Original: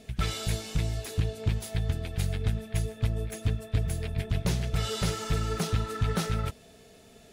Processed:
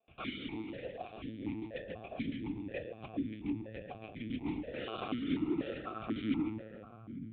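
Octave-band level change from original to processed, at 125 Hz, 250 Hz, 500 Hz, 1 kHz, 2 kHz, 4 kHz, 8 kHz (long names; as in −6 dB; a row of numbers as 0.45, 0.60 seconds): −19.0 dB, +0.5 dB, −6.0 dB, −7.5 dB, −7.5 dB, −12.0 dB, below −40 dB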